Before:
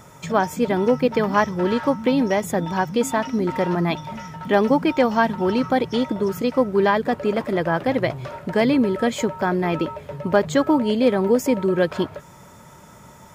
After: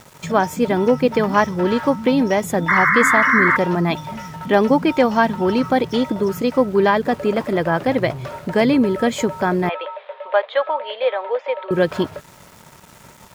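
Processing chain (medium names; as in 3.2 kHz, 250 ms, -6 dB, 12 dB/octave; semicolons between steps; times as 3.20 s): small samples zeroed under -43 dBFS; 2.68–3.57 s: painted sound noise 1–2.2 kHz -18 dBFS; 9.69–11.71 s: Chebyshev band-pass 520–3700 Hz, order 4; trim +2.5 dB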